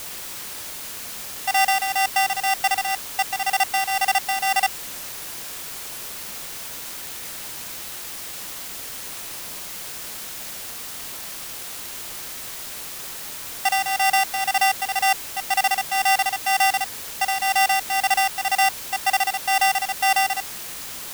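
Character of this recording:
a buzz of ramps at a fixed pitch in blocks of 16 samples
tremolo triangle 2 Hz, depth 65%
a quantiser's noise floor 6 bits, dither triangular

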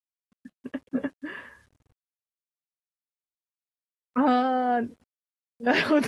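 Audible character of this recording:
a quantiser's noise floor 10 bits, dither none
AAC

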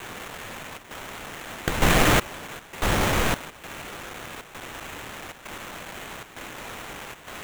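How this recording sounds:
a quantiser's noise floor 8 bits, dither triangular
chopped level 1.1 Hz, depth 65%, duty 85%
aliases and images of a low sample rate 4,900 Hz, jitter 20%

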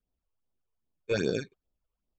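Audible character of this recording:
aliases and images of a low sample rate 2,000 Hz, jitter 0%
phaser sweep stages 8, 2.5 Hz, lowest notch 200–2,300 Hz
Ogg Vorbis

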